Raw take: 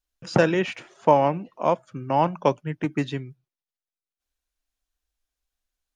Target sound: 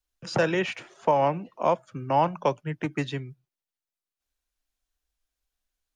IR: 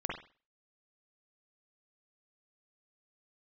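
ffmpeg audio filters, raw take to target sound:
-filter_complex "[0:a]acrossover=split=180|340|1900[link_01][link_02][link_03][link_04];[link_02]acompressor=threshold=-41dB:ratio=6[link_05];[link_01][link_05][link_03][link_04]amix=inputs=4:normalize=0,alimiter=limit=-11.5dB:level=0:latency=1:release=135"

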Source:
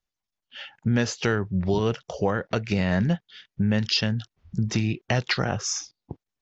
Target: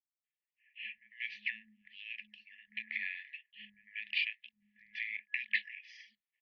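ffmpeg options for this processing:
ffmpeg -i in.wav -filter_complex "[0:a]acrossover=split=350|1200[link_01][link_02][link_03];[link_02]adelay=50[link_04];[link_03]adelay=240[link_05];[link_01][link_04][link_05]amix=inputs=3:normalize=0,afftfilt=real='re*(1-between(b*sr/4096,100,2000))':imag='im*(1-between(b*sr/4096,100,2000))':win_size=4096:overlap=0.75,highpass=frequency=250:width_type=q:width=0.5412,highpass=frequency=250:width_type=q:width=1.307,lowpass=frequency=3000:width_type=q:width=0.5176,lowpass=frequency=3000:width_type=q:width=0.7071,lowpass=frequency=3000:width_type=q:width=1.932,afreqshift=-310" out.wav

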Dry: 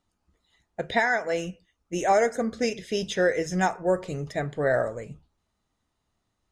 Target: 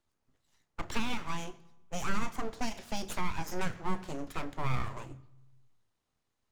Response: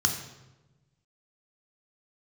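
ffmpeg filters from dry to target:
-filter_complex "[0:a]aeval=exprs='abs(val(0))':channel_layout=same,asplit=2[link_01][link_02];[1:a]atrim=start_sample=2205,adelay=30[link_03];[link_02][link_03]afir=irnorm=-1:irlink=0,volume=-25dB[link_04];[link_01][link_04]amix=inputs=2:normalize=0,acrossover=split=300[link_05][link_06];[link_06]acompressor=threshold=-31dB:ratio=5[link_07];[link_05][link_07]amix=inputs=2:normalize=0,volume=-3.5dB"

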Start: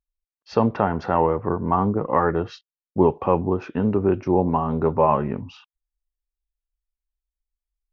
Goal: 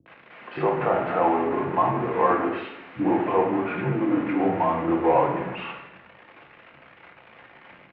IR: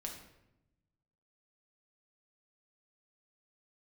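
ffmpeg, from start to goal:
-filter_complex "[0:a]aeval=exprs='val(0)+0.5*0.0841*sgn(val(0))':channel_layout=same[link_01];[1:a]atrim=start_sample=2205[link_02];[link_01][link_02]afir=irnorm=-1:irlink=0,highpass=frequency=300:width_type=q:width=0.5412,highpass=frequency=300:width_type=q:width=1.307,lowpass=frequency=2600:width_type=q:width=0.5176,lowpass=frequency=2600:width_type=q:width=0.7071,lowpass=frequency=2600:width_type=q:width=1.932,afreqshift=-73,acrossover=split=290[link_03][link_04];[link_04]adelay=60[link_05];[link_03][link_05]amix=inputs=2:normalize=0"

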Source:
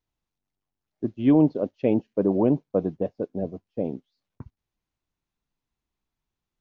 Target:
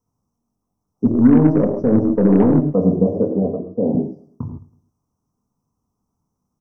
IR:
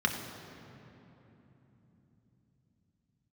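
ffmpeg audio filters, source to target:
-filter_complex "[0:a]alimiter=limit=-18dB:level=0:latency=1:release=42,asuperstop=centerf=2600:order=12:qfactor=0.6[link_01];[1:a]atrim=start_sample=2205,afade=type=out:start_time=0.22:duration=0.01,atrim=end_sample=10143[link_02];[link_01][link_02]afir=irnorm=-1:irlink=0,asplit=3[link_03][link_04][link_05];[link_03]afade=type=out:start_time=1.05:duration=0.02[link_06];[link_04]aeval=exprs='0.473*(cos(1*acos(clip(val(0)/0.473,-1,1)))-cos(1*PI/2))+0.0188*(cos(8*acos(clip(val(0)/0.473,-1,1)))-cos(8*PI/2))':channel_layout=same,afade=type=in:start_time=1.05:duration=0.02,afade=type=out:start_time=2.61:duration=0.02[link_07];[link_05]afade=type=in:start_time=2.61:duration=0.02[link_08];[link_06][link_07][link_08]amix=inputs=3:normalize=0,asettb=1/sr,asplit=3[link_09][link_10][link_11];[link_09]atrim=end=3.324[link_12];[link_10]atrim=start=3.32:end=3.95,asetpts=PTS-STARTPTS,afade=type=in:duration=0.004:curve=qsin,afade=type=out:start_time=0.626:duration=0.004:curve=qsin,bass=frequency=250:gain=-7,treble=frequency=4000:gain=-15[link_13];[link_11]atrim=start=3.946[link_14];[link_12][link_13]acrossfade=duration=0.004:curve1=hsin:curve2=qsin[link_15];[link_15][link_14]acrossfade=duration=0.004:curve1=qsin:curve2=hsin,aecho=1:1:109|218|327:0.1|0.043|0.0185,volume=5dB"

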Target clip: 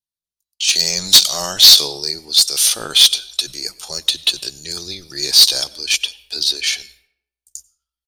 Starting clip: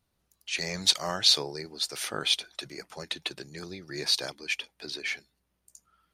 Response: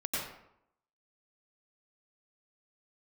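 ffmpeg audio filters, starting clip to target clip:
-filter_complex "[0:a]agate=range=-33dB:threshold=-49dB:ratio=3:detection=peak,highshelf=frequency=4300:gain=-5.5,atempo=0.76,asubboost=boost=8.5:cutoff=55,aexciter=amount=5.9:drive=8:freq=3000,asplit=2[link_01][link_02];[1:a]atrim=start_sample=2205[link_03];[link_02][link_03]afir=irnorm=-1:irlink=0,volume=-25dB[link_04];[link_01][link_04]amix=inputs=2:normalize=0,acontrast=70,volume=-1dB"

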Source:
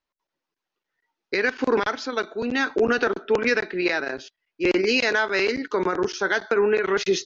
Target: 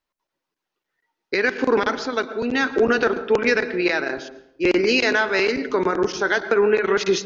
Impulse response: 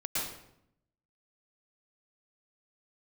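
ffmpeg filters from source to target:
-filter_complex "[0:a]asplit=2[link_01][link_02];[1:a]atrim=start_sample=2205,highshelf=frequency=2500:gain=-12[link_03];[link_02][link_03]afir=irnorm=-1:irlink=0,volume=-14.5dB[link_04];[link_01][link_04]amix=inputs=2:normalize=0,volume=1.5dB"

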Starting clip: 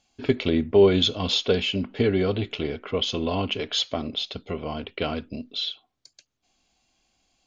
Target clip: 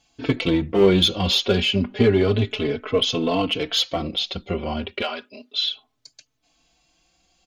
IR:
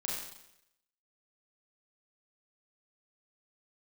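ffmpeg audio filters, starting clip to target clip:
-filter_complex "[0:a]asettb=1/sr,asplit=3[link_01][link_02][link_03];[link_01]atrim=end=5.014[link_04];[link_02]atrim=start=5.01:end=5.71,asetpts=PTS-STARTPTS,afade=type=in:duration=0.004:curve=qsin,afade=type=out:start_time=0.696:duration=0.004:curve=qsin,highpass=650[link_05];[link_03]atrim=start=5.706[link_06];[link_04][link_05]acrossfade=duration=0.004:curve1=hsin:curve2=qsin[link_07];[link_07][link_06]acrossfade=duration=0.004:curve1=qsin:curve2=hsin,asplit=2[link_08][link_09];[link_09]asoftclip=type=hard:threshold=-21dB,volume=-4.5dB[link_10];[link_08][link_10]amix=inputs=2:normalize=0,asplit=2[link_11][link_12];[link_12]adelay=4.1,afreqshift=0.31[link_13];[link_11][link_13]amix=inputs=2:normalize=1,volume=4dB"

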